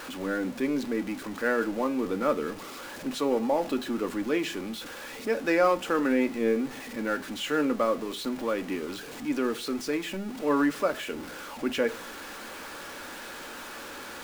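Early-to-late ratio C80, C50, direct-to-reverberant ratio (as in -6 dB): 24.5 dB, 19.5 dB, 7.5 dB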